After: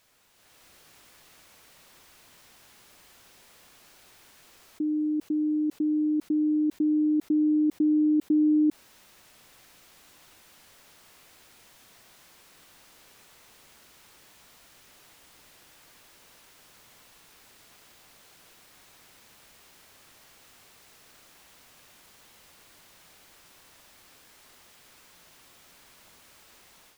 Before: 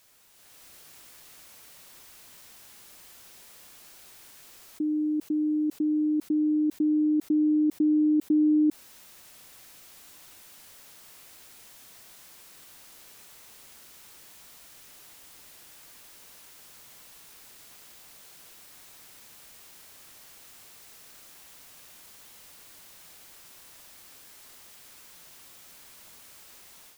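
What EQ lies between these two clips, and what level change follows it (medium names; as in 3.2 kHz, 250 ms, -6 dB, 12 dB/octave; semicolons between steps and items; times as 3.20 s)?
treble shelf 5.6 kHz -8.5 dB; 0.0 dB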